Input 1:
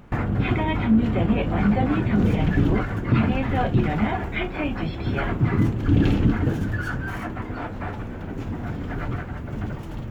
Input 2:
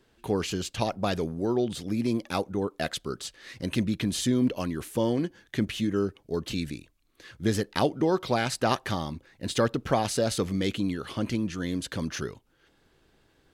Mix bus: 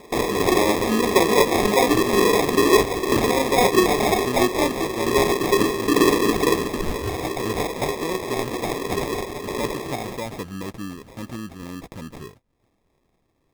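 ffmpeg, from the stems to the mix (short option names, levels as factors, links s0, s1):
-filter_complex "[0:a]highpass=f=410:t=q:w=4.9,acrusher=samples=3:mix=1:aa=0.000001,volume=1.26[s0];[1:a]volume=0.596[s1];[s0][s1]amix=inputs=2:normalize=0,highshelf=f=11000:g=11.5,acrusher=samples=30:mix=1:aa=0.000001"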